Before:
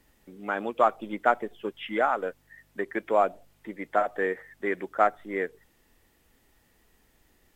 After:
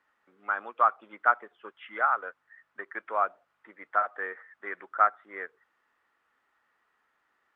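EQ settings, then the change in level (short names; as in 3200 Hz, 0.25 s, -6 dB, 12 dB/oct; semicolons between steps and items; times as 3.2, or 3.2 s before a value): band-pass 1300 Hz, Q 3.3; +5.0 dB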